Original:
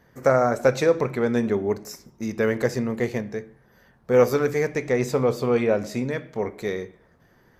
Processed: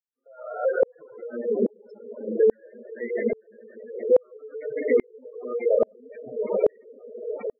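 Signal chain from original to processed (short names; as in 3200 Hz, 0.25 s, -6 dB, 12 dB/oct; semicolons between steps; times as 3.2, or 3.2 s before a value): opening faded in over 0.71 s; diffused feedback echo 0.9 s, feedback 64%, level -12 dB; reverb RT60 2.3 s, pre-delay 5 ms, DRR -3 dB; compressor 8:1, threshold -17 dBFS, peak gain reduction 8.5 dB; weighting filter A; loudest bins only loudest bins 32; AGC gain up to 14 dB; reverb removal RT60 0.52 s; spectral gate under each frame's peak -10 dB strong; dynamic EQ 1400 Hz, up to -5 dB, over -40 dBFS, Q 2.4; dB-ramp tremolo swelling 1.2 Hz, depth 39 dB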